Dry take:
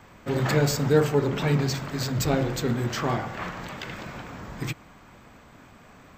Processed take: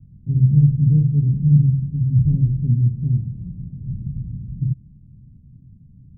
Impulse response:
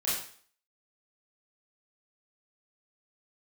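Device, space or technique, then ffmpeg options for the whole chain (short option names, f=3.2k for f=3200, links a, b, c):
the neighbour's flat through the wall: -filter_complex "[0:a]lowpass=f=170:w=0.5412,lowpass=f=170:w=1.3066,equalizer=f=130:t=o:w=0.58:g=5,asettb=1/sr,asplit=3[a][b][c];[a]atrim=end=3.804[d];[b]atrim=start=3.8:end=4.38,asetpts=PTS-STARTPTS,afade=t=in:d=0.004:c=qsin,afade=t=out:st=0.576:d=0.004:c=qsin,lowshelf=f=150:g=8[e];[c]atrim=start=4.376[f];[d][e]acrossfade=d=0.004:c1=hsin:c2=qsin[g];[g][f]acrossfade=d=0.004:c1=qsin:c2=hsin,volume=9dB"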